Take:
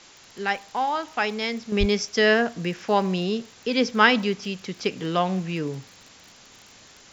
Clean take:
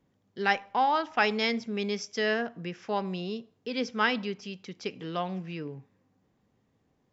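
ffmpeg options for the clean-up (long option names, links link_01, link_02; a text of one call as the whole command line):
ffmpeg -i in.wav -filter_complex "[0:a]adeclick=threshold=4,asplit=3[link_01][link_02][link_03];[link_01]afade=type=out:start_time=1.79:duration=0.02[link_04];[link_02]highpass=frequency=140:width=0.5412,highpass=frequency=140:width=1.3066,afade=type=in:start_time=1.79:duration=0.02,afade=type=out:start_time=1.91:duration=0.02[link_05];[link_03]afade=type=in:start_time=1.91:duration=0.02[link_06];[link_04][link_05][link_06]amix=inputs=3:normalize=0,afwtdn=0.005,asetnsamples=nb_out_samples=441:pad=0,asendcmd='1.72 volume volume -9dB',volume=0dB" out.wav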